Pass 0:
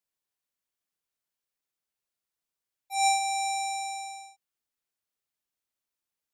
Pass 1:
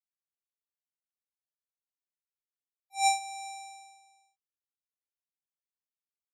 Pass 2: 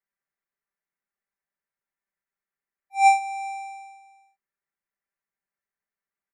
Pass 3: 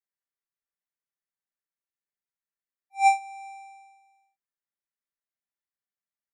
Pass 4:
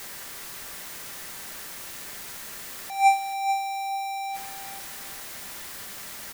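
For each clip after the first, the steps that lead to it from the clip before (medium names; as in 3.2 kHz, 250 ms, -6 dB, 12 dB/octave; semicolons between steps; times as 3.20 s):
upward expansion 2.5:1, over -37 dBFS
resonant high shelf 2.6 kHz -10.5 dB, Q 3; comb 5.1 ms; trim +5 dB
upward expansion 1.5:1, over -27 dBFS; trim -2.5 dB
jump at every zero crossing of -28.5 dBFS; feedback delay 435 ms, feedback 26%, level -11 dB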